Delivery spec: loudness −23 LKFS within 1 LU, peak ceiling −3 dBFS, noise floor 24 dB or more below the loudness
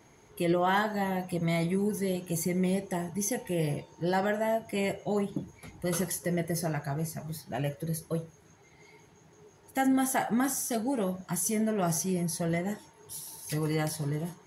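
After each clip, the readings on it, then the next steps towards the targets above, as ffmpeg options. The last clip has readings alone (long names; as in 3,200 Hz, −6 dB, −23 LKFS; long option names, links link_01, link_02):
integrated loudness −30.5 LKFS; sample peak −16.0 dBFS; target loudness −23.0 LKFS
→ -af "volume=7.5dB"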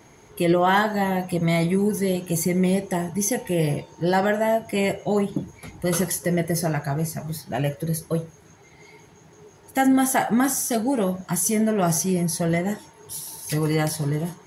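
integrated loudness −23.0 LKFS; sample peak −8.5 dBFS; background noise floor −51 dBFS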